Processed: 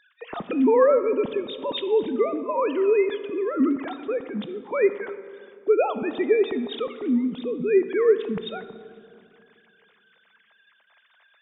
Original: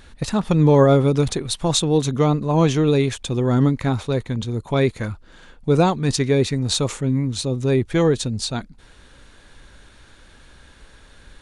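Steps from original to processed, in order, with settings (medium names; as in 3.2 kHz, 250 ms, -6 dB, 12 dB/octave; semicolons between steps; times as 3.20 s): formants replaced by sine waves; reverberation RT60 2.3 s, pre-delay 13 ms, DRR 11 dB; trim -4.5 dB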